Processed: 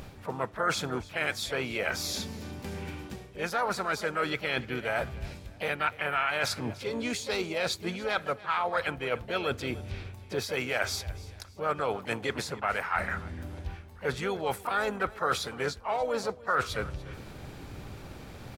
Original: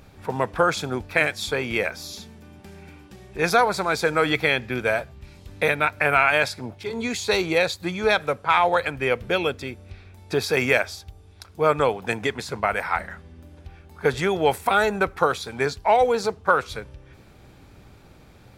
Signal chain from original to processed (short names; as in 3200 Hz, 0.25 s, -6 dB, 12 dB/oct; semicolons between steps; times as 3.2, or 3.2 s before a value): harmoniser +3 st -17 dB, +4 st -9 dB; reverse; compressor 5:1, threshold -35 dBFS, peak gain reduction 20 dB; reverse; feedback echo 0.292 s, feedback 38%, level -19.5 dB; dynamic EQ 1300 Hz, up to +6 dB, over -53 dBFS, Q 3.9; gain +5 dB